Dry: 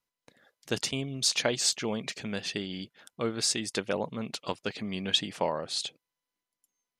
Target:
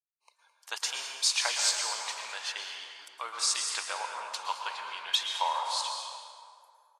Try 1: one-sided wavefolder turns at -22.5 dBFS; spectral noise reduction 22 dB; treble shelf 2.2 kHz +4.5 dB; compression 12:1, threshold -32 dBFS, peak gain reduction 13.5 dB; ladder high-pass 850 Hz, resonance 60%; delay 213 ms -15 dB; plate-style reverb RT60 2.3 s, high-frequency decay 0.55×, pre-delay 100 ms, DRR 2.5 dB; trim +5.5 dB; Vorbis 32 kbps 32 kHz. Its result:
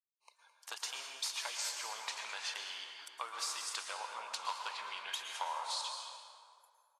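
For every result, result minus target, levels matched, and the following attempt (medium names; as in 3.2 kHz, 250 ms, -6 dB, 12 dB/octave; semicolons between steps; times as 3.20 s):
compression: peak gain reduction +13.5 dB; one-sided wavefolder: distortion +20 dB
one-sided wavefolder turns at -22.5 dBFS; spectral noise reduction 22 dB; ladder high-pass 850 Hz, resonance 60%; treble shelf 2.2 kHz +4.5 dB; delay 213 ms -15 dB; plate-style reverb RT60 2.3 s, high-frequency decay 0.55×, pre-delay 100 ms, DRR 2.5 dB; trim +5.5 dB; Vorbis 32 kbps 32 kHz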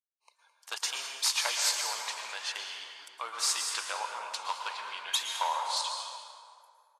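one-sided wavefolder: distortion +20 dB
one-sided wavefolder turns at -15.5 dBFS; spectral noise reduction 22 dB; ladder high-pass 850 Hz, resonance 60%; treble shelf 2.2 kHz +4.5 dB; delay 213 ms -15 dB; plate-style reverb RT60 2.3 s, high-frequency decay 0.55×, pre-delay 100 ms, DRR 2.5 dB; trim +5.5 dB; Vorbis 32 kbps 32 kHz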